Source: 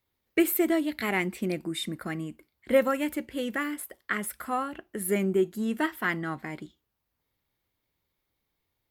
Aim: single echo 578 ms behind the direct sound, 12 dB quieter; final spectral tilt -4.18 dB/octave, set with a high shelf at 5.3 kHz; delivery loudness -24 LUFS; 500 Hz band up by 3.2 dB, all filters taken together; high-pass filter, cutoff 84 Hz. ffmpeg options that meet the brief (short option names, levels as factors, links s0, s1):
-af "highpass=84,equalizer=f=500:t=o:g=4,highshelf=f=5300:g=3.5,aecho=1:1:578:0.251,volume=1.41"